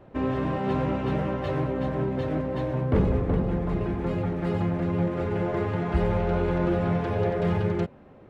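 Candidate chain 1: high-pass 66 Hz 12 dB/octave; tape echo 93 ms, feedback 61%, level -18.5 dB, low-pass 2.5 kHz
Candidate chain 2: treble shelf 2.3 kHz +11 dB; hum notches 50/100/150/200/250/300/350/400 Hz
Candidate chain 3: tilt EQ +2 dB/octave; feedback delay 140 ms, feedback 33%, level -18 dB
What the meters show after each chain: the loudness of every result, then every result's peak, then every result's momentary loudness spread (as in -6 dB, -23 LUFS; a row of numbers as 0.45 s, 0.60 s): -27.0 LUFS, -27.0 LUFS, -30.0 LUFS; -10.5 dBFS, -10.5 dBFS, -14.5 dBFS; 4 LU, 4 LU, 4 LU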